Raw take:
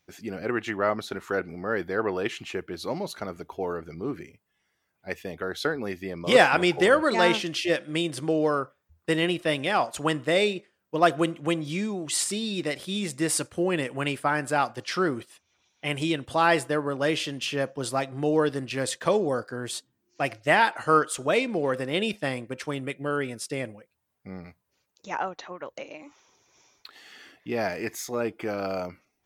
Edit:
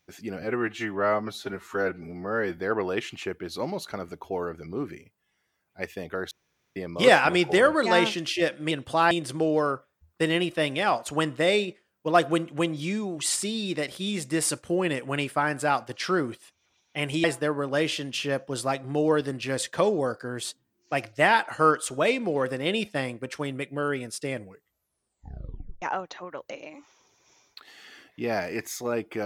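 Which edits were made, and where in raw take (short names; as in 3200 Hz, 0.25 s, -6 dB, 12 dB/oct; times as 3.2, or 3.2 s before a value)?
0.42–1.86 stretch 1.5×
5.59–6.04 room tone
16.12–16.52 move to 7.99
23.64 tape stop 1.46 s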